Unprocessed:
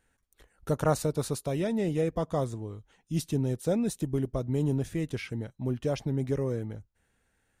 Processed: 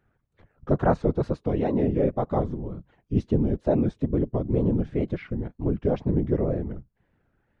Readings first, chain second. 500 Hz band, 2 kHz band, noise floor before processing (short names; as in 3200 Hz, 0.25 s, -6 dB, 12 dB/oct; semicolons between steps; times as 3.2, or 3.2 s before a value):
+4.5 dB, +0.5 dB, -74 dBFS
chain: tape spacing loss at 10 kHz 43 dB; wow and flutter 140 cents; whisperiser; gain +6.5 dB